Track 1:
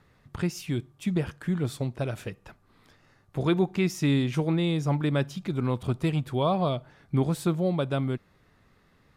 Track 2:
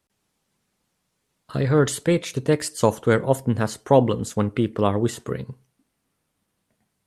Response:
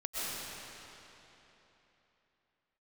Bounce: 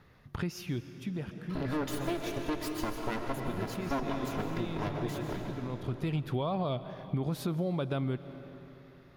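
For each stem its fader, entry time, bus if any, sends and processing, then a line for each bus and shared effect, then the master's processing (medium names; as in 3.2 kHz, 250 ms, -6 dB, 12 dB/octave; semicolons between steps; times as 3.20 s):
+1.0 dB, 0.00 s, send -21 dB, peak limiter -19.5 dBFS, peak gain reduction 6.5 dB; auto duck -14 dB, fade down 1.30 s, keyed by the second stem
-9.5 dB, 0.00 s, send -7.5 dB, comb filter that takes the minimum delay 3 ms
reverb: on, RT60 3.4 s, pre-delay 85 ms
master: peaking EQ 8.1 kHz -12.5 dB 0.4 oct; compression 4:1, threshold -29 dBFS, peak gain reduction 7 dB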